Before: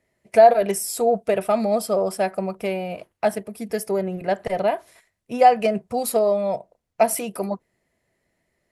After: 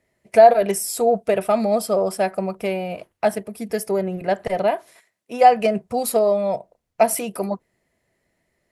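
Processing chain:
0:04.56–0:05.42: high-pass filter 85 Hz → 340 Hz 12 dB per octave
level +1.5 dB

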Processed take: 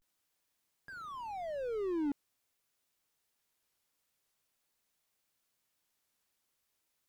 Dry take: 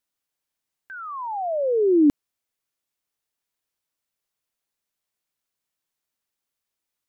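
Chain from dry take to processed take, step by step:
pitch vibrato 0.45 Hz 96 cents
slew-rate limiting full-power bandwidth 5.1 Hz
level +3.5 dB

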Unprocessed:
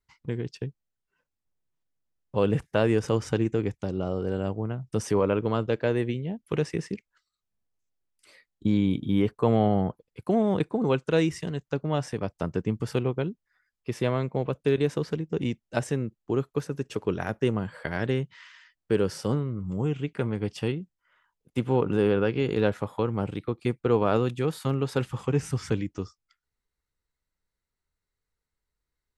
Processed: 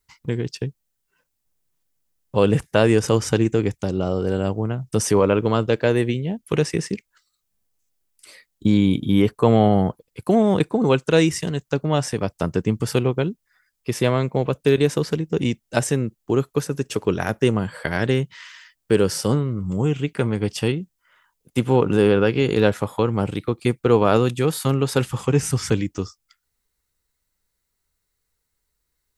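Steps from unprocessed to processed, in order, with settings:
high-shelf EQ 5,500 Hz +11.5 dB
level +6.5 dB

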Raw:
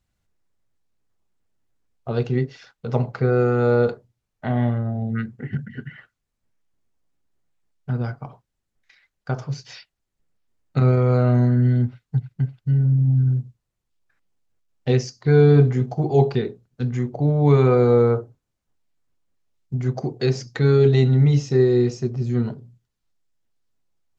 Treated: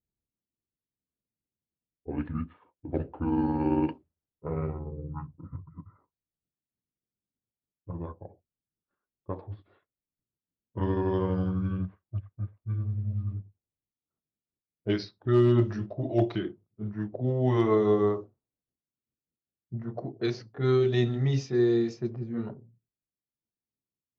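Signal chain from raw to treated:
pitch glide at a constant tempo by −9 semitones ending unshifted
high-pass filter 230 Hz 6 dB per octave
hard clipping −10 dBFS, distortion −36 dB
low-pass that shuts in the quiet parts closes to 310 Hz, open at −19 dBFS
level −3.5 dB

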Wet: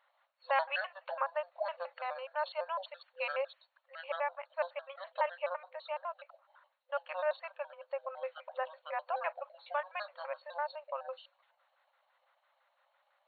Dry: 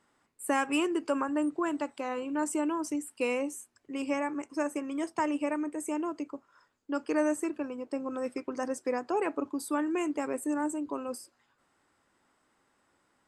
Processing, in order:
pitch shifter gated in a rhythm −9 semitones, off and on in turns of 84 ms
brick-wall band-pass 510–4,400 Hz

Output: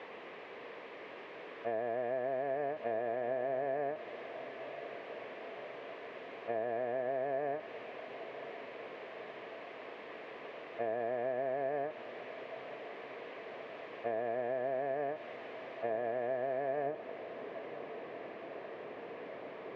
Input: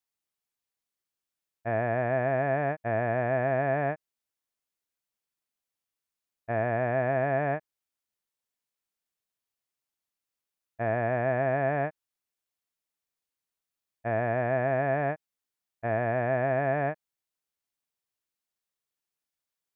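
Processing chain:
linear delta modulator 64 kbit/s, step −29.5 dBFS
tilt shelving filter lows +5 dB, about 910 Hz, from 0:16.85 lows +10 dB
downward compressor 4 to 1, threshold −29 dBFS, peak gain reduction 7.5 dB
loudspeaker in its box 440–2,300 Hz, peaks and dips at 450 Hz +6 dB, 850 Hz −6 dB, 1,400 Hz −10 dB
feedback delay with all-pass diffusion 1,019 ms, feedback 73%, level −14 dB
level −1 dB

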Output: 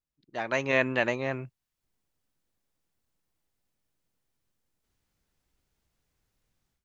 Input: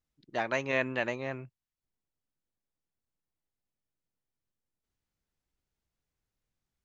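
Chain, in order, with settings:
automatic gain control gain up to 16.5 dB
level −7.5 dB

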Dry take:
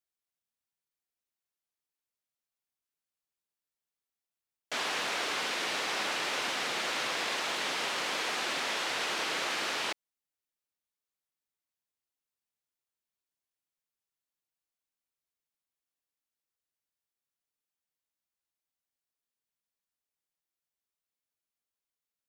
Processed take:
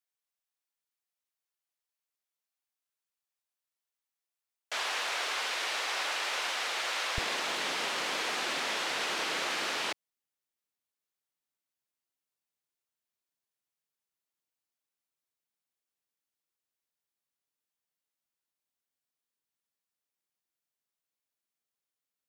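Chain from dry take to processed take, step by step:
high-pass filter 550 Hz 12 dB per octave, from 0:07.18 98 Hz

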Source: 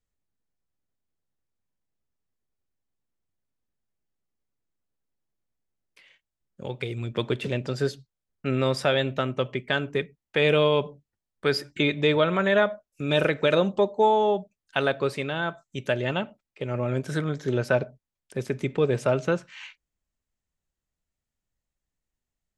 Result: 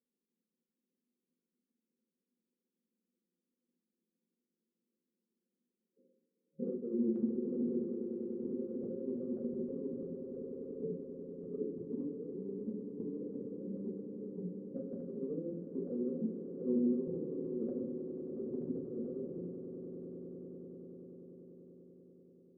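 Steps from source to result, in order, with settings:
brick-wall band-pass 160–540 Hz
compressor whose output falls as the input rises −38 dBFS, ratio −1
amplitude tremolo 13 Hz, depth 60%
echo that builds up and dies away 97 ms, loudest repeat 8, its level −13.5 dB
convolution reverb RT60 0.50 s, pre-delay 4 ms, DRR −0.5 dB
level −6.5 dB

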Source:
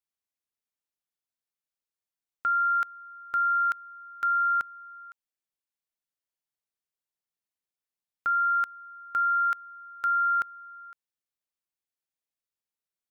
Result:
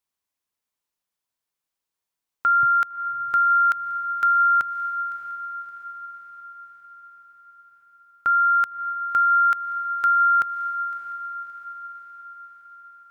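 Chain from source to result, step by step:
parametric band 1,000 Hz +5 dB 0.4 octaves, from 0:02.63 130 Hz
feedback delay with all-pass diffusion 621 ms, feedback 60%, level −12.5 dB
level +6 dB

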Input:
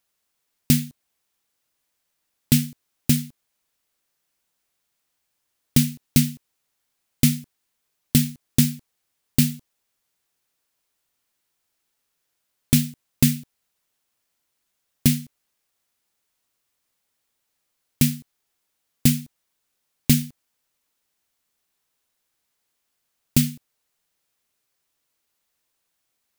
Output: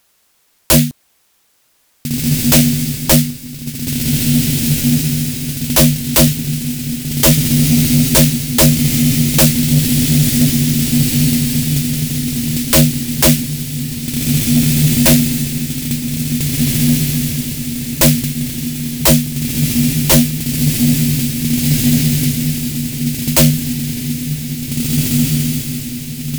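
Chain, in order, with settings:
feedback delay with all-pass diffusion 1,830 ms, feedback 55%, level −7 dB
sine wavefolder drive 17 dB, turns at −1.5 dBFS
level −2.5 dB

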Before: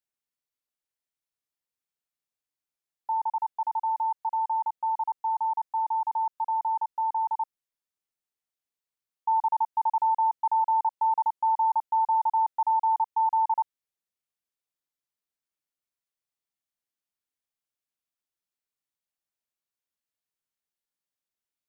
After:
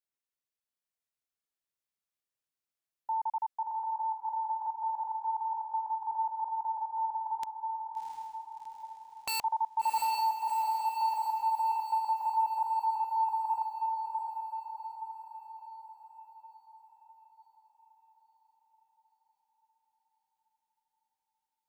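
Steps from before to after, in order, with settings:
0:07.43–0:09.42: wrap-around overflow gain 23.5 dB
feedback delay with all-pass diffusion 702 ms, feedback 54%, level −3.5 dB
level −4.5 dB

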